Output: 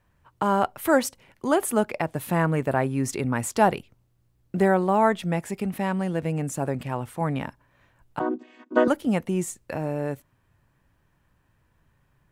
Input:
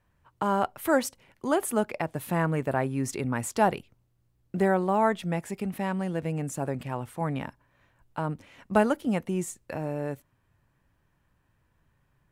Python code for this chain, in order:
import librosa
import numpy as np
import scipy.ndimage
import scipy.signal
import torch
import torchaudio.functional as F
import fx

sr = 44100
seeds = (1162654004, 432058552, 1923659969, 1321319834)

y = fx.chord_vocoder(x, sr, chord='major triad', root=59, at=(8.19, 8.88))
y = F.gain(torch.from_numpy(y), 3.5).numpy()